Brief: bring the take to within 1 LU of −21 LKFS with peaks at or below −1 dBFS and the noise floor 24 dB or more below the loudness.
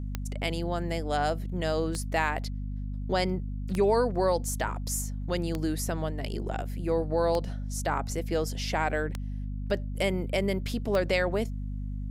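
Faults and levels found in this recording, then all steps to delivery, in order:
number of clicks 7; mains hum 50 Hz; hum harmonics up to 250 Hz; level of the hum −31 dBFS; integrated loudness −30.0 LKFS; sample peak −13.5 dBFS; target loudness −21.0 LKFS
→ click removal
mains-hum notches 50/100/150/200/250 Hz
level +9 dB

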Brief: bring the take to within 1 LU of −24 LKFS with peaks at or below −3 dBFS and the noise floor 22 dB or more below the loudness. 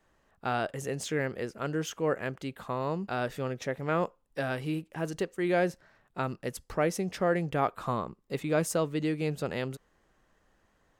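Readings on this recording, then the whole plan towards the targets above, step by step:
integrated loudness −32.0 LKFS; sample peak −14.0 dBFS; target loudness −24.0 LKFS
→ level +8 dB

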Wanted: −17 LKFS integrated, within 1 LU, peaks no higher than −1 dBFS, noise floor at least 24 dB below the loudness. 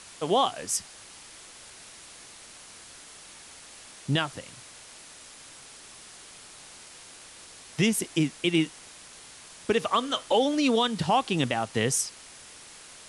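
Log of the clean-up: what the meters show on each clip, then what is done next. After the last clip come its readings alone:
background noise floor −48 dBFS; target noise floor −51 dBFS; integrated loudness −26.5 LKFS; sample peak −12.0 dBFS; target loudness −17.0 LKFS
→ noise reduction from a noise print 6 dB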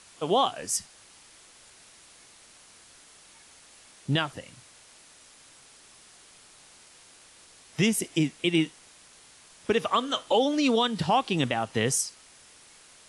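background noise floor −54 dBFS; integrated loudness −26.5 LKFS; sample peak −12.0 dBFS; target loudness −17.0 LKFS
→ level +9.5 dB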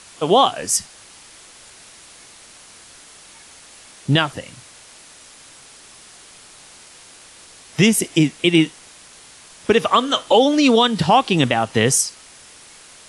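integrated loudness −17.0 LKFS; sample peak −2.5 dBFS; background noise floor −45 dBFS

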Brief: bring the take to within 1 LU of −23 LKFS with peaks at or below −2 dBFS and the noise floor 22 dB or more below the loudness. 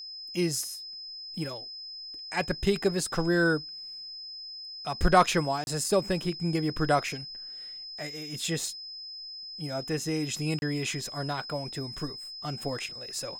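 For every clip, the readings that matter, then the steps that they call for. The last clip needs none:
number of dropouts 2; longest dropout 31 ms; interfering tone 5,100 Hz; level of the tone −39 dBFS; integrated loudness −30.5 LKFS; sample peak −7.0 dBFS; target loudness −23.0 LKFS
→ repair the gap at 0:05.64/0:10.59, 31 ms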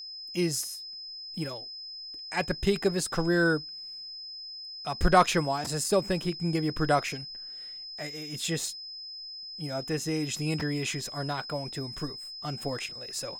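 number of dropouts 0; interfering tone 5,100 Hz; level of the tone −39 dBFS
→ notch filter 5,100 Hz, Q 30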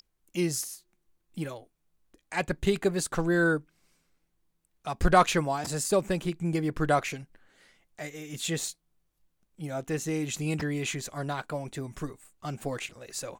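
interfering tone none found; integrated loudness −30.0 LKFS; sample peak −7.5 dBFS; target loudness −23.0 LKFS
→ level +7 dB
brickwall limiter −2 dBFS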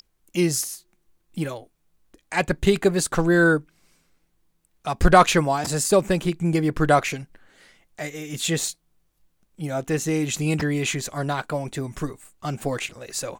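integrated loudness −23.0 LKFS; sample peak −2.0 dBFS; background noise floor −69 dBFS

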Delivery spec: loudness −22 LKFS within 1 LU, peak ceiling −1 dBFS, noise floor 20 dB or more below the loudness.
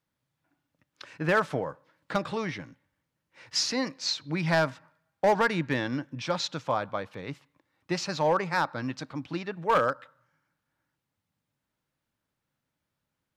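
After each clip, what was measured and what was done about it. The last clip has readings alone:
share of clipped samples 0.3%; peaks flattened at −16.5 dBFS; integrated loudness −29.0 LKFS; sample peak −16.5 dBFS; target loudness −22.0 LKFS
→ clipped peaks rebuilt −16.5 dBFS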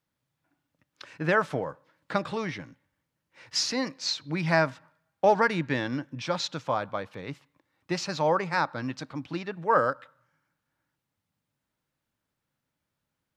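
share of clipped samples 0.0%; integrated loudness −28.5 LKFS; sample peak −8.5 dBFS; target loudness −22.0 LKFS
→ level +6.5 dB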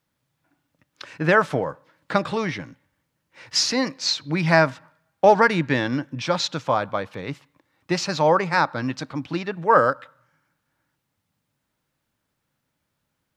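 integrated loudness −22.0 LKFS; sample peak −2.0 dBFS; background noise floor −77 dBFS

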